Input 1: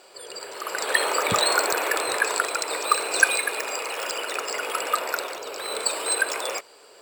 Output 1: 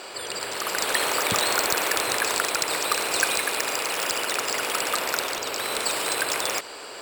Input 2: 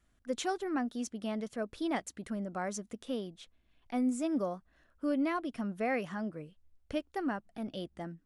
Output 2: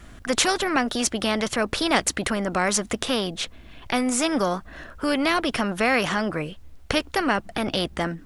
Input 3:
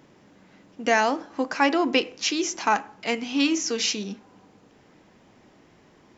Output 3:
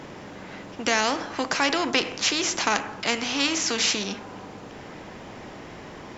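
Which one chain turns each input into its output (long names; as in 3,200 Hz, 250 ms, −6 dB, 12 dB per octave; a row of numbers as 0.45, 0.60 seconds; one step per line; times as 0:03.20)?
high-shelf EQ 5,800 Hz −6.5 dB
every bin compressed towards the loudest bin 2 to 1
loudness normalisation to −24 LKFS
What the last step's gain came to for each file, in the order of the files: −1.0, +17.0, +0.5 decibels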